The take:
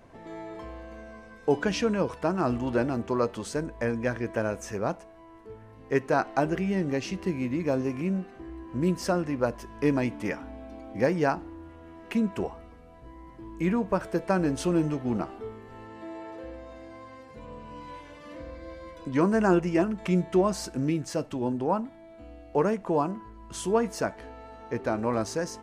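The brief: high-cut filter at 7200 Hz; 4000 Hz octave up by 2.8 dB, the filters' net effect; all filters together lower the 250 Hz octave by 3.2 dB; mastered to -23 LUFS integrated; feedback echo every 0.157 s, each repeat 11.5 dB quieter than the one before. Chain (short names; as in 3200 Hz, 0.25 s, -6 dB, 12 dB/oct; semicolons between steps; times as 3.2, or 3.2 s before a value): LPF 7200 Hz; bell 250 Hz -4.5 dB; bell 4000 Hz +4.5 dB; feedback echo 0.157 s, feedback 27%, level -11.5 dB; gain +6.5 dB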